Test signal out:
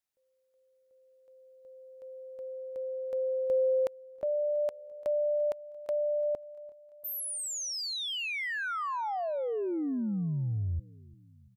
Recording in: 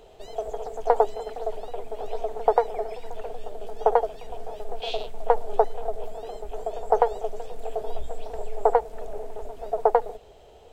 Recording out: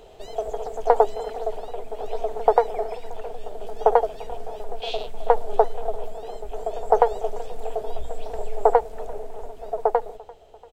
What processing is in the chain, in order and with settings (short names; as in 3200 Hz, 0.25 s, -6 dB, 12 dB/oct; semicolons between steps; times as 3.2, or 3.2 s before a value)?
vocal rider within 5 dB 2 s; feedback echo 0.343 s, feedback 56%, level -22.5 dB